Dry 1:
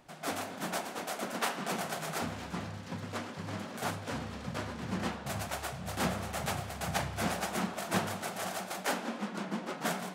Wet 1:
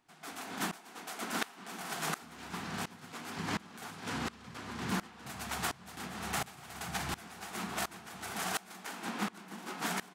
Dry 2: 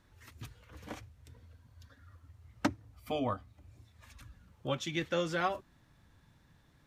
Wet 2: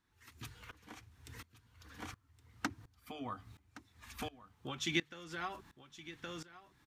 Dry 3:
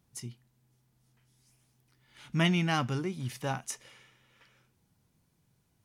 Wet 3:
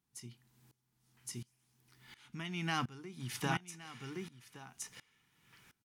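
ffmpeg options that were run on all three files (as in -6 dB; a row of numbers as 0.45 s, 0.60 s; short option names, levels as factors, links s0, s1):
-af "lowshelf=f=180:g=-8,bandreject=f=50:t=h:w=6,bandreject=f=100:t=h:w=6,bandreject=f=150:t=h:w=6,acompressor=threshold=0.0112:ratio=5,equalizer=f=570:t=o:w=0.39:g=-13.5,aecho=1:1:1118:0.447,aeval=exprs='val(0)*pow(10,-22*if(lt(mod(-1.4*n/s,1),2*abs(-1.4)/1000),1-mod(-1.4*n/s,1)/(2*abs(-1.4)/1000),(mod(-1.4*n/s,1)-2*abs(-1.4)/1000)/(1-2*abs(-1.4)/1000))/20)':c=same,volume=3.55"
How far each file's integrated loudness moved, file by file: -3.0 LU, -7.5 LU, -9.5 LU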